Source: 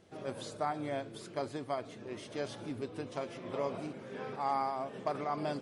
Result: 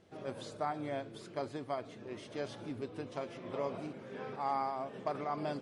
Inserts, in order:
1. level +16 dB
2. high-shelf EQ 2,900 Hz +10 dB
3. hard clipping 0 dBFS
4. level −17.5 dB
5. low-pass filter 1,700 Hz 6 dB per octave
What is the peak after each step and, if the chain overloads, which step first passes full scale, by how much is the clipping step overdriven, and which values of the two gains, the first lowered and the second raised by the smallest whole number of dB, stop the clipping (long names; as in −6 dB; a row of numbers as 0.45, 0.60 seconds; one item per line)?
−6.0, −4.5, −4.5, −22.0, −23.5 dBFS
no step passes full scale